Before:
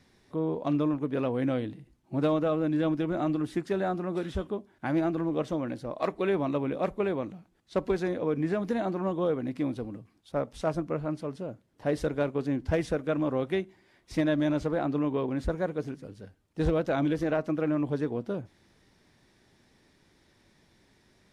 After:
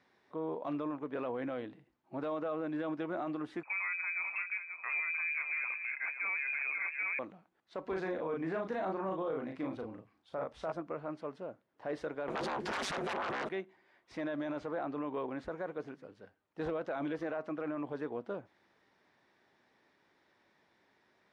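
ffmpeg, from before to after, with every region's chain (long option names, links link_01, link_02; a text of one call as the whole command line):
ffmpeg -i in.wav -filter_complex "[0:a]asettb=1/sr,asplit=3[link_01][link_02][link_03];[link_01]atrim=end=3.634[link_04];[link_02]atrim=start=3.63:end=7.19,asetpts=PTS-STARTPTS,afade=type=in:duration=0.004:curve=qsin,afade=type=out:start_time=3.556:duration=0.004:curve=qsin,lowpass=frequency=2300:width_type=q:width=0.5098,lowpass=frequency=2300:width_type=q:width=0.6013,lowpass=frequency=2300:width_type=q:width=0.9,lowpass=frequency=2300:width_type=q:width=2.563,afreqshift=-2700,aecho=1:1:532:0.335,atrim=end_sample=156996[link_05];[link_03]atrim=start=7.186[link_06];[link_04][link_05]acrossfade=duration=0.004:curve1=hsin:curve2=qsin[link_07];[link_07][link_06]acrossfade=duration=0.004:curve1=qsin:curve2=hsin,asettb=1/sr,asplit=3[link_08][link_09][link_10];[link_08]atrim=end=7.864[link_11];[link_09]atrim=start=7.86:end=10.72,asetpts=PTS-STARTPTS,afade=type=in:duration=0.004:curve=qsin,afade=type=out:start_time=2.856:duration=0.004:curve=qsin,equalizer=frequency=69:width_type=o:width=0.84:gain=14,asplit=2[link_12][link_13];[link_13]adelay=37,volume=-4dB[link_14];[link_12][link_14]amix=inputs=2:normalize=0,atrim=end_sample=126126[link_15];[link_10]atrim=start=10.716[link_16];[link_11][link_15]acrossfade=duration=0.004:curve1=hsin:curve2=qsin[link_17];[link_17][link_16]acrossfade=duration=0.004:curve1=qsin:curve2=hsin,asettb=1/sr,asplit=3[link_18][link_19][link_20];[link_18]atrim=end=12.284[link_21];[link_19]atrim=start=12.28:end=13.49,asetpts=PTS-STARTPTS,afade=type=in:duration=0.004:curve=qsin,afade=type=out:start_time=1.206:duration=0.004:curve=qsin,highshelf=frequency=3300:gain=11.5,aeval=exprs='0.168*sin(PI/2*7.08*val(0)/0.168)':channel_layout=same,aeval=exprs='val(0)*sin(2*PI*100*n/s)':channel_layout=same[link_22];[link_20]atrim=start=13.486[link_23];[link_21][link_22]acrossfade=duration=0.004:curve1=hsin:curve2=qsin[link_24];[link_24][link_23]acrossfade=duration=0.004:curve1=qsin:curve2=hsin,lowpass=1100,aderivative,alimiter=level_in=22dB:limit=-24dB:level=0:latency=1:release=11,volume=-22dB,volume=18dB" out.wav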